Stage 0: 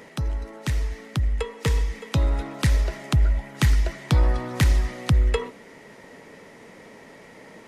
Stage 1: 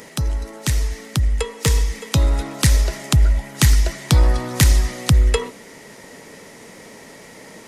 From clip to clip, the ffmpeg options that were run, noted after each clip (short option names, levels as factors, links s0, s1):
-af "bass=f=250:g=1,treble=f=4000:g=11,volume=1.58"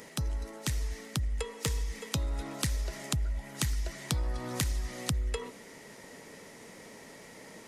-af "acompressor=threshold=0.1:ratio=6,volume=0.376"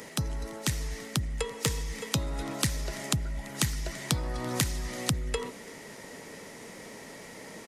-filter_complex "[0:a]acrossover=split=110[s0][s1];[s0]asoftclip=type=tanh:threshold=0.015[s2];[s1]aecho=1:1:337:0.0708[s3];[s2][s3]amix=inputs=2:normalize=0,volume=1.68"